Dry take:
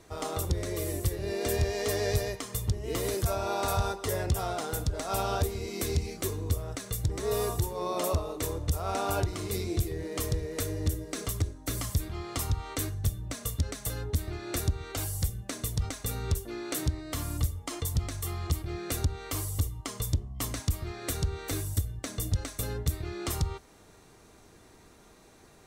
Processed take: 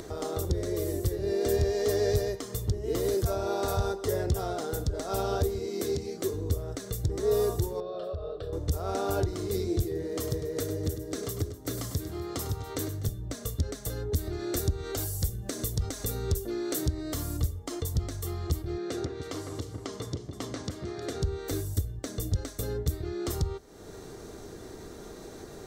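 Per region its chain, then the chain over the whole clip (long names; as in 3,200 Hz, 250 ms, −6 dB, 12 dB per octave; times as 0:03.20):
0:05.60–0:06.34: high-pass filter 140 Hz + high-shelf EQ 12,000 Hz −4 dB
0:07.80–0:08.53: downward compressor 4 to 1, threshold −31 dBFS + high-frequency loss of the air 140 metres + phaser with its sweep stopped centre 1,400 Hz, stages 8
0:09.85–0:13.09: high-pass filter 91 Hz + multi-tap delay 101/248 ms −11/−18.5 dB
0:14.12–0:17.37: high-shelf EQ 5,700 Hz +5.5 dB + upward compression, threshold −30 dBFS
0:18.78–0:21.22: band-pass filter 160–5,700 Hz + hum removal 290.3 Hz, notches 33 + delay that swaps between a low-pass and a high-pass 156 ms, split 2,300 Hz, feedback 55%, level −5.5 dB
whole clip: graphic EQ with 15 bands 400 Hz +6 dB, 1,000 Hz −5 dB, 2,500 Hz −9 dB, 10,000 Hz −6 dB; upward compression, threshold −32 dBFS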